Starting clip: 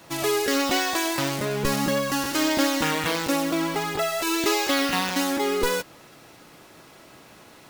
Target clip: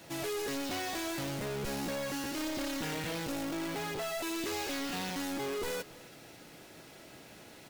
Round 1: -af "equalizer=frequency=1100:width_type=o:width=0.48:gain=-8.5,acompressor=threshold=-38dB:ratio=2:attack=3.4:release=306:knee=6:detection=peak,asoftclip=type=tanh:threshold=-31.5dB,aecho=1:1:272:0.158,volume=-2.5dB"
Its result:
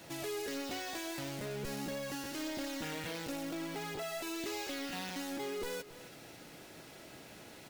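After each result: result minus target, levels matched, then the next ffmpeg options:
downward compressor: peak gain reduction +12 dB; echo-to-direct +7 dB
-af "equalizer=frequency=1100:width_type=o:width=0.48:gain=-8.5,asoftclip=type=tanh:threshold=-31.5dB,aecho=1:1:272:0.158,volume=-2.5dB"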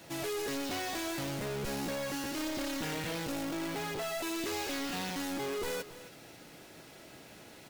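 echo-to-direct +7 dB
-af "equalizer=frequency=1100:width_type=o:width=0.48:gain=-8.5,asoftclip=type=tanh:threshold=-31.5dB,aecho=1:1:272:0.0708,volume=-2.5dB"

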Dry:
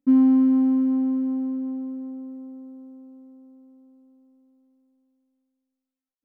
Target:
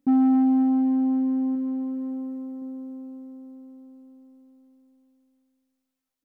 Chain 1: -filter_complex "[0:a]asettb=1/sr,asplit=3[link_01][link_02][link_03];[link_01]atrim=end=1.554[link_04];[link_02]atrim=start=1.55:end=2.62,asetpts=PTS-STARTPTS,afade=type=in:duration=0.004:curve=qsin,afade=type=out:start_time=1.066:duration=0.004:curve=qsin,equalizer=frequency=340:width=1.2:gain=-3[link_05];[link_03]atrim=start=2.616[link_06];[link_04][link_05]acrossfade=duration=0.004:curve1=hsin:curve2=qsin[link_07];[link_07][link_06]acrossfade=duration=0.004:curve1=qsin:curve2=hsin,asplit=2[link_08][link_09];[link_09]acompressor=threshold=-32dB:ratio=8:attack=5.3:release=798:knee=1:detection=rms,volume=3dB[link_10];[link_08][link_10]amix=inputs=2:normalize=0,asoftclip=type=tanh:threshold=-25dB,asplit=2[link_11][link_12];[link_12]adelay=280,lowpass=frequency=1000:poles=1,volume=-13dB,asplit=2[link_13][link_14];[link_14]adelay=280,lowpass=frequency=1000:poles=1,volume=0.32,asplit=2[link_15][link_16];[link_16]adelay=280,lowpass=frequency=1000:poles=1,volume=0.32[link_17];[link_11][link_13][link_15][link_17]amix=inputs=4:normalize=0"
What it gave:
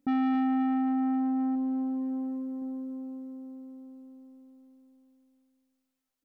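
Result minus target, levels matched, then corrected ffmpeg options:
soft clipping: distortion +8 dB
-filter_complex "[0:a]asettb=1/sr,asplit=3[link_01][link_02][link_03];[link_01]atrim=end=1.554[link_04];[link_02]atrim=start=1.55:end=2.62,asetpts=PTS-STARTPTS,afade=type=in:duration=0.004:curve=qsin,afade=type=out:start_time=1.066:duration=0.004:curve=qsin,equalizer=frequency=340:width=1.2:gain=-3[link_05];[link_03]atrim=start=2.616[link_06];[link_04][link_05]acrossfade=duration=0.004:curve1=hsin:curve2=qsin[link_07];[link_07][link_06]acrossfade=duration=0.004:curve1=qsin:curve2=hsin,asplit=2[link_08][link_09];[link_09]acompressor=threshold=-32dB:ratio=8:attack=5.3:release=798:knee=1:detection=rms,volume=3dB[link_10];[link_08][link_10]amix=inputs=2:normalize=0,asoftclip=type=tanh:threshold=-15.5dB,asplit=2[link_11][link_12];[link_12]adelay=280,lowpass=frequency=1000:poles=1,volume=-13dB,asplit=2[link_13][link_14];[link_14]adelay=280,lowpass=frequency=1000:poles=1,volume=0.32,asplit=2[link_15][link_16];[link_16]adelay=280,lowpass=frequency=1000:poles=1,volume=0.32[link_17];[link_11][link_13][link_15][link_17]amix=inputs=4:normalize=0"

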